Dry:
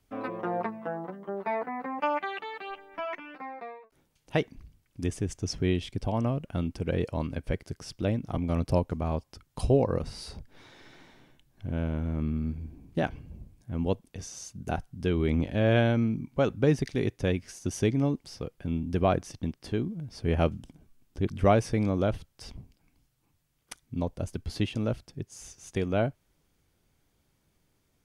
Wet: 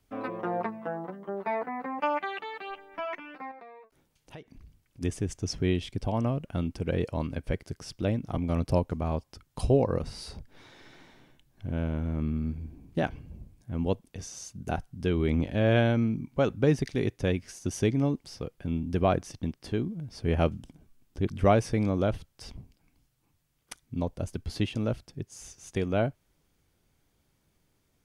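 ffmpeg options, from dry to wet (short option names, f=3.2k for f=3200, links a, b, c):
-filter_complex "[0:a]asettb=1/sr,asplit=3[a][b][c];[a]atrim=end=3.514[d];[b]atrim=start=3.51:end=5.01,asetpts=PTS-STARTPTS,afade=t=in:d=0.004:c=qsin,afade=t=out:st=1.496:d=0.004:c=qsin,acompressor=threshold=-45dB:ratio=4:attack=3.2:release=140:knee=1:detection=peak[e];[c]atrim=start=5.006[f];[d][e]acrossfade=d=0.004:c1=hsin:c2=qsin[g];[g][f]acrossfade=d=0.004:c1=qsin:c2=hsin"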